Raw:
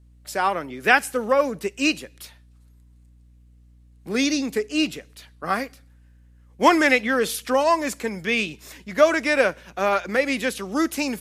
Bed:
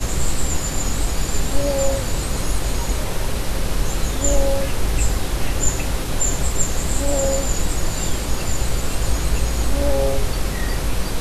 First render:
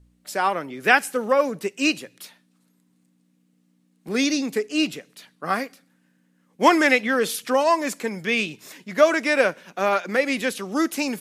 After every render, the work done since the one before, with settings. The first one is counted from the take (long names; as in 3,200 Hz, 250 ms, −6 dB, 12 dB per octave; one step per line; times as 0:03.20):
hum removal 60 Hz, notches 2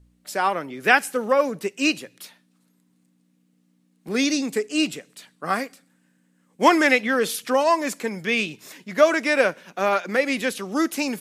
0:04.28–0:06.64: parametric band 8,000 Hz +7.5 dB 0.34 octaves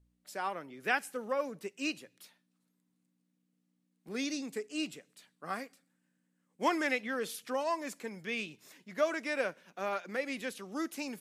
level −14 dB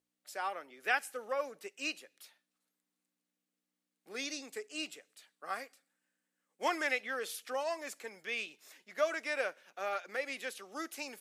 high-pass filter 500 Hz 12 dB per octave
notch filter 1,000 Hz, Q 11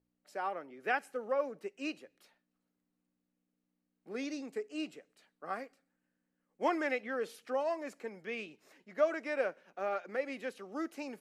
spectral tilt −4 dB per octave
notch filter 3,500 Hz, Q 15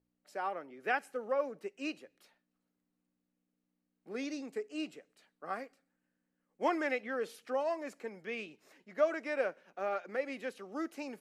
no processing that can be heard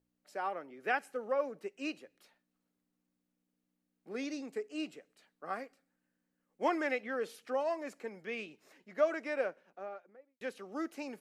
0:09.20–0:10.41: fade out and dull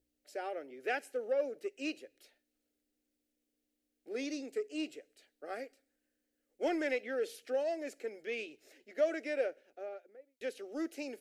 phaser with its sweep stopped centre 430 Hz, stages 4
in parallel at −6 dB: soft clipping −36.5 dBFS, distortion −8 dB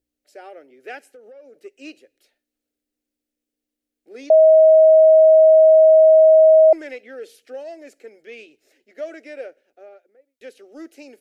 0:01.03–0:01.64: downward compressor 5 to 1, threshold −42 dBFS
0:04.30–0:06.73: beep over 634 Hz −7 dBFS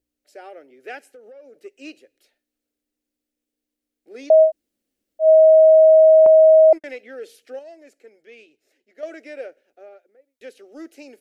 0:04.47–0:05.24: fill with room tone, crossfade 0.10 s
0:06.26–0:06.84: noise gate −26 dBFS, range −56 dB
0:07.59–0:09.03: clip gain −6.5 dB